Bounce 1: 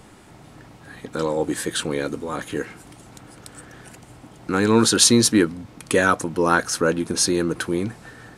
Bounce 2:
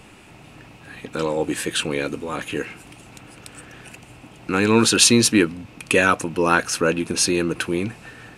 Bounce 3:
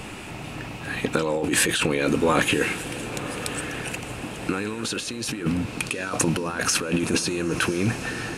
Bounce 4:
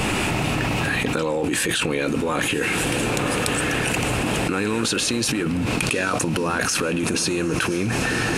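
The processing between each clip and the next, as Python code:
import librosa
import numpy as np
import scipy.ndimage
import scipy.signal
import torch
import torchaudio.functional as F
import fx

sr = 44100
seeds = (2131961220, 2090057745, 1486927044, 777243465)

y1 = fx.peak_eq(x, sr, hz=2600.0, db=13.5, octaves=0.35)
y2 = fx.over_compress(y1, sr, threshold_db=-28.0, ratio=-1.0)
y2 = fx.echo_diffused(y2, sr, ms=1041, feedback_pct=44, wet_db=-13.0)
y2 = F.gain(torch.from_numpy(y2), 3.0).numpy()
y3 = fx.env_flatten(y2, sr, amount_pct=100)
y3 = F.gain(torch.from_numpy(y3), -4.5).numpy()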